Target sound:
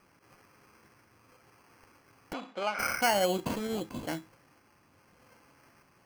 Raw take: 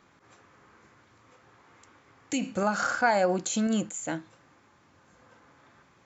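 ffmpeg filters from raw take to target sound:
-filter_complex "[0:a]asettb=1/sr,asplit=3[s0][s1][s2];[s0]atrim=end=3.374[s3];[s1]atrim=start=3.37:end=4.02,asetpts=PTS-STARTPTS,afade=t=in:d=0.004:c=qsin,afade=t=out:st=0.646:d=0.004:c=qsin,aecho=1:1:2.4:0.62,atrim=end_sample=28665[s4];[s2]atrim=start=4.016[s5];[s3][s4]acrossfade=d=0.004:c1=hsin:c2=qsin[s6];[s6][s5]acrossfade=d=0.004:c1=qsin:c2=hsin,acrusher=samples=12:mix=1:aa=0.000001,asettb=1/sr,asplit=3[s7][s8][s9];[s7]atrim=end=2.334[s10];[s8]atrim=start=2.33:end=2.79,asetpts=PTS-STARTPTS,afade=t=in:d=0.004:c=qsin,afade=t=out:st=0.456:d=0.004:c=qsin,highpass=480,lowpass=3300[s11];[s9]atrim=start=2.786[s12];[s10][s11]acrossfade=d=0.004:c1=hsin:c2=qsin[s13];[s13][s12]acrossfade=d=0.004:c1=qsin:c2=hsin,volume=0.708"

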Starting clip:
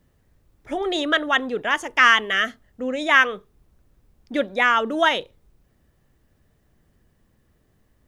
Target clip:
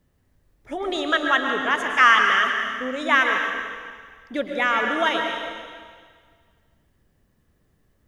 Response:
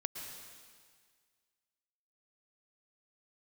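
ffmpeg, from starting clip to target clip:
-filter_complex "[0:a]asettb=1/sr,asplit=3[s0][s1][s2];[s0]atrim=end=0.804[s3];[s1]atrim=start=0.8:end=3.15,asetpts=PTS-STARTPTS,afade=t=in:d=0.004:c=qsin,afade=t=out:st=2.346:d=0.004:c=qsin,equalizer=f=1200:t=o:w=0.82:g=5.5[s4];[s2]atrim=start=3.146[s5];[s3][s4]acrossfade=d=0.004:c1=hsin:c2=qsin[s6];[s6][s5]acrossfade=d=0.004:c1=qsin:c2=hsin[s7];[1:a]atrim=start_sample=2205[s8];[s7][s8]afir=irnorm=-1:irlink=0,volume=0.794"

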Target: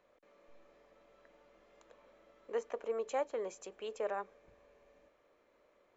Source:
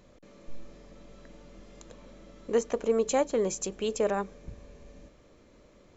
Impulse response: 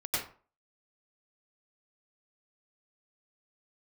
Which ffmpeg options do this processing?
-filter_complex "[0:a]acrossover=split=420 2800:gain=0.1 1 0.224[s0][s1][s2];[s0][s1][s2]amix=inputs=3:normalize=0,volume=0.473"

